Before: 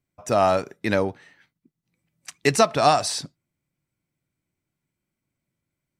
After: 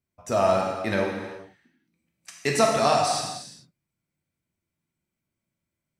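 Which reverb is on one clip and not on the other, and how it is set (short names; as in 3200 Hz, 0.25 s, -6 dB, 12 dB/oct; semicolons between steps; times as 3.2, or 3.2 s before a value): non-linear reverb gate 0.46 s falling, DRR -1.5 dB; gain -5.5 dB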